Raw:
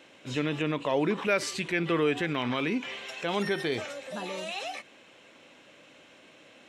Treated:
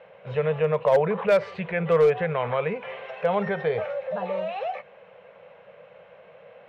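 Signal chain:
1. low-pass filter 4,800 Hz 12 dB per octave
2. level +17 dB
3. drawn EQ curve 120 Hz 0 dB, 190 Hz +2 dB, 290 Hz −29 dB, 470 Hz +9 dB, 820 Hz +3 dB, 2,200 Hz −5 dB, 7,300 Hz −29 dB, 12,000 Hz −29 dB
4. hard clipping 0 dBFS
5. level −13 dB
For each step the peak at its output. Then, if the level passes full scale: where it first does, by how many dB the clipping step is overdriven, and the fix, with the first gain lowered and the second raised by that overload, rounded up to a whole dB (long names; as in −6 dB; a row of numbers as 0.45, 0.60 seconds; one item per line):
−13.0, +4.0, +5.0, 0.0, −13.0 dBFS
step 2, 5.0 dB
step 2 +12 dB, step 5 −8 dB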